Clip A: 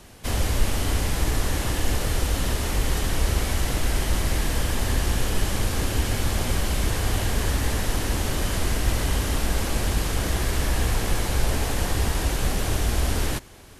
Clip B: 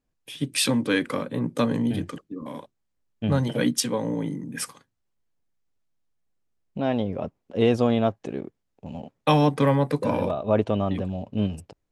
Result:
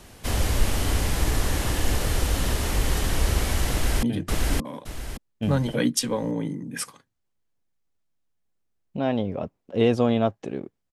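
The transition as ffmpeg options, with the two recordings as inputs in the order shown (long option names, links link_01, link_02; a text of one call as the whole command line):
ffmpeg -i cue0.wav -i cue1.wav -filter_complex "[0:a]apad=whole_dur=10.92,atrim=end=10.92,atrim=end=4.032[link_01];[1:a]atrim=start=1.838:end=8.73[link_02];[link_01][link_02]acrossfade=duration=0.004:curve1=hsin:curve2=hsin,asplit=2[link_03][link_04];[link_04]afade=type=in:start_time=3.71:duration=0.01,afade=type=out:start_time=4.03:duration=0.01,aecho=0:1:570|1140|1710|2280:0.944061|0.283218|0.0849655|0.0254896[link_05];[link_03][link_05]amix=inputs=2:normalize=0" out.wav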